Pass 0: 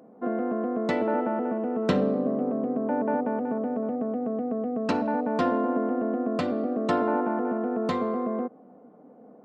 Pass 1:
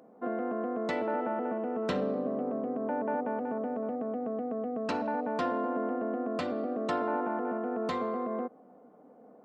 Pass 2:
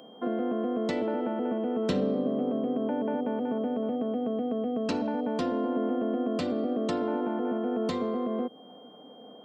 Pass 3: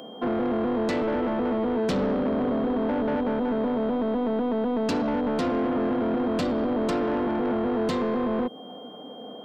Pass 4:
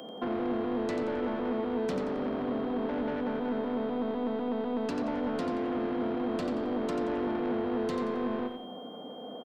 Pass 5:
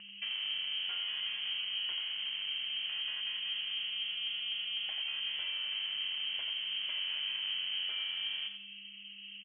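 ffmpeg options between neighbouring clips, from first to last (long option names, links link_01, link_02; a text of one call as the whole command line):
ffmpeg -i in.wav -filter_complex "[0:a]equalizer=frequency=150:width_type=o:width=3:gain=-6.5,asplit=2[link_01][link_02];[link_02]alimiter=limit=-24dB:level=0:latency=1,volume=2dB[link_03];[link_01][link_03]amix=inputs=2:normalize=0,volume=-8dB" out.wav
ffmpeg -i in.wav -filter_complex "[0:a]aeval=exprs='val(0)+0.000891*sin(2*PI*3200*n/s)':channel_layout=same,acrossover=split=490|3000[link_01][link_02][link_03];[link_02]acompressor=threshold=-46dB:ratio=4[link_04];[link_01][link_04][link_03]amix=inputs=3:normalize=0,volume=6dB" out.wav
ffmpeg -i in.wav -af "asoftclip=type=tanh:threshold=-30dB,volume=8.5dB" out.wav
ffmpeg -i in.wav -filter_complex "[0:a]acrossover=split=200|2200[link_01][link_02][link_03];[link_01]acompressor=threshold=-42dB:ratio=4[link_04];[link_02]acompressor=threshold=-29dB:ratio=4[link_05];[link_03]acompressor=threshold=-46dB:ratio=4[link_06];[link_04][link_05][link_06]amix=inputs=3:normalize=0,aecho=1:1:89|178|267|356:0.447|0.161|0.0579|0.0208,volume=-2.5dB" out.wav
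ffmpeg -i in.wav -af "lowpass=frequency=2900:width_type=q:width=0.5098,lowpass=frequency=2900:width_type=q:width=0.6013,lowpass=frequency=2900:width_type=q:width=0.9,lowpass=frequency=2900:width_type=q:width=2.563,afreqshift=-3400,volume=-6dB" out.wav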